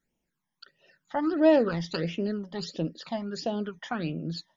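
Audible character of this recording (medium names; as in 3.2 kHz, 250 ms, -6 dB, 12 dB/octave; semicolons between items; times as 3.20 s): phasing stages 12, 1.5 Hz, lowest notch 430–1500 Hz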